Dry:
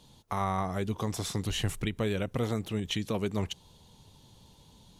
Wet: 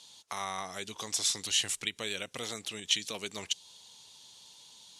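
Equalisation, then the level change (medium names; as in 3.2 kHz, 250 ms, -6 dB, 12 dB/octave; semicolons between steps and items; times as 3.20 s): frequency weighting ITU-R 468; dynamic bell 1.2 kHz, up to -5 dB, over -44 dBFS, Q 0.78; -1.5 dB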